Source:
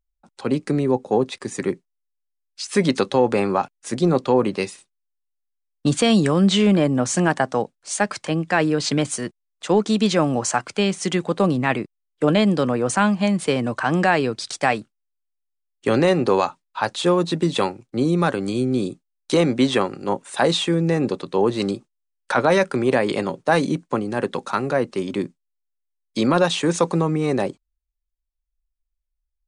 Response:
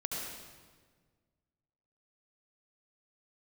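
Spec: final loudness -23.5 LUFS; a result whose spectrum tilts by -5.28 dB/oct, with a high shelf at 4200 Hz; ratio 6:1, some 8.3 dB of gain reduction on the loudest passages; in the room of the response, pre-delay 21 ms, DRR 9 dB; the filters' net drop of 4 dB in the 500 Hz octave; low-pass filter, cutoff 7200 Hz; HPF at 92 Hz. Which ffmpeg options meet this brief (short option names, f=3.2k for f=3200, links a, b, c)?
-filter_complex "[0:a]highpass=92,lowpass=7.2k,equalizer=f=500:t=o:g=-5,highshelf=f=4.2k:g=-4.5,acompressor=threshold=-23dB:ratio=6,asplit=2[a][b];[1:a]atrim=start_sample=2205,adelay=21[c];[b][c]afir=irnorm=-1:irlink=0,volume=-12dB[d];[a][d]amix=inputs=2:normalize=0,volume=4.5dB"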